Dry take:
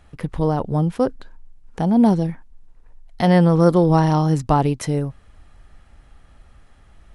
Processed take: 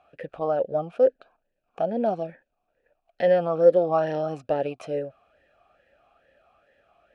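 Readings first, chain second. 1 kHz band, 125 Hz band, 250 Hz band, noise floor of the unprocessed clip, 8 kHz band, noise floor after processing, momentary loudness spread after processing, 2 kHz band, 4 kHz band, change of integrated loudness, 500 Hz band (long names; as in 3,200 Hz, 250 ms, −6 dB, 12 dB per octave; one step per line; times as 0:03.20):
−7.5 dB, −20.5 dB, −16.0 dB, −51 dBFS, below −20 dB, −78 dBFS, 13 LU, −6.0 dB, below −10 dB, −6.0 dB, +0.5 dB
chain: in parallel at 0 dB: brickwall limiter −9 dBFS, peak gain reduction 7 dB
on the sum: formant filter swept between two vowels a-e 2.3 Hz
level +1.5 dB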